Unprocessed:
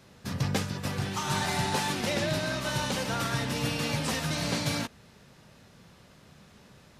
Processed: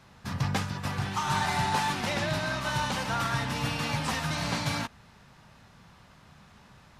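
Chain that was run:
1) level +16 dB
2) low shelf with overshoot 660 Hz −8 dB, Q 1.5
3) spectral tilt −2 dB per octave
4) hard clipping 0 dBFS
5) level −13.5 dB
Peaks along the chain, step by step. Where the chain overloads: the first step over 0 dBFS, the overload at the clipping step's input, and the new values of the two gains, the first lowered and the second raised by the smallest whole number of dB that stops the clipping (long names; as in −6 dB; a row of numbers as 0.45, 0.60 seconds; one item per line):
−1.0, −0.5, −1.5, −1.5, −15.0 dBFS
no step passes full scale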